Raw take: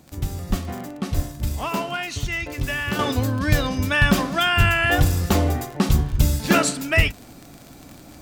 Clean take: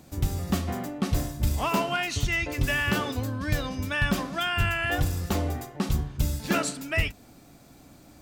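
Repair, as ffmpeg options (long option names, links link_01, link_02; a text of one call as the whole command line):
ffmpeg -i in.wav -filter_complex "[0:a]adeclick=threshold=4,asplit=3[link_01][link_02][link_03];[link_01]afade=type=out:start_time=0.49:duration=0.02[link_04];[link_02]highpass=frequency=140:width=0.5412,highpass=frequency=140:width=1.3066,afade=type=in:start_time=0.49:duration=0.02,afade=type=out:start_time=0.61:duration=0.02[link_05];[link_03]afade=type=in:start_time=0.61:duration=0.02[link_06];[link_04][link_05][link_06]amix=inputs=3:normalize=0,asplit=3[link_07][link_08][link_09];[link_07]afade=type=out:start_time=1.15:duration=0.02[link_10];[link_08]highpass=frequency=140:width=0.5412,highpass=frequency=140:width=1.3066,afade=type=in:start_time=1.15:duration=0.02,afade=type=out:start_time=1.27:duration=0.02[link_11];[link_09]afade=type=in:start_time=1.27:duration=0.02[link_12];[link_10][link_11][link_12]amix=inputs=3:normalize=0,asplit=3[link_13][link_14][link_15];[link_13]afade=type=out:start_time=6.11:duration=0.02[link_16];[link_14]highpass=frequency=140:width=0.5412,highpass=frequency=140:width=1.3066,afade=type=in:start_time=6.11:duration=0.02,afade=type=out:start_time=6.23:duration=0.02[link_17];[link_15]afade=type=in:start_time=6.23:duration=0.02[link_18];[link_16][link_17][link_18]amix=inputs=3:normalize=0,asetnsamples=nb_out_samples=441:pad=0,asendcmd='2.99 volume volume -8dB',volume=0dB" out.wav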